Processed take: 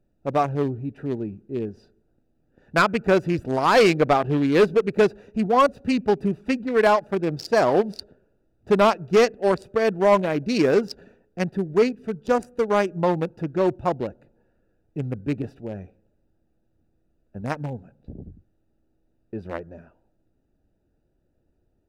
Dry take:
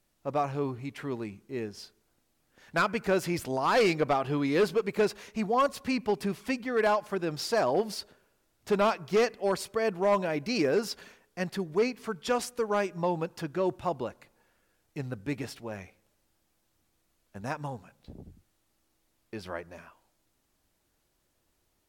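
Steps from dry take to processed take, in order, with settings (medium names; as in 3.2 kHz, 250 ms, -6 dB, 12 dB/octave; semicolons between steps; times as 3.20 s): local Wiener filter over 41 samples; 11.94–12.55 s: peaking EQ 680 Hz -> 5.6 kHz -8 dB 1.1 oct; trim +8.5 dB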